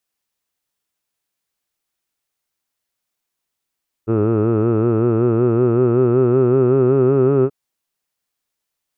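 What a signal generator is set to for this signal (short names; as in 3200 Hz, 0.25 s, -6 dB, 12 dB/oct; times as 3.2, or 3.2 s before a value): formant vowel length 3.43 s, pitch 108 Hz, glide +4 st, F1 390 Hz, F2 1300 Hz, F3 2600 Hz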